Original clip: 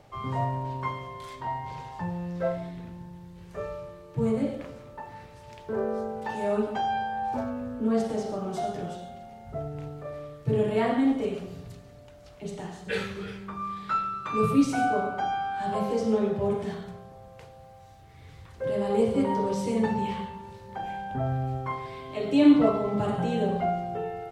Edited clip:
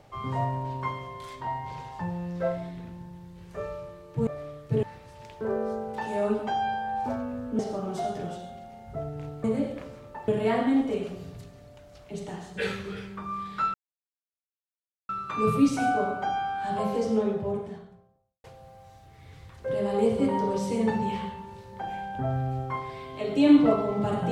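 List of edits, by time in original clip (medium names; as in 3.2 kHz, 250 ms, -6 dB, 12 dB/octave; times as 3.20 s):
4.27–5.11 s: swap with 10.03–10.59 s
7.87–8.18 s: delete
14.05 s: insert silence 1.35 s
15.91–17.40 s: studio fade out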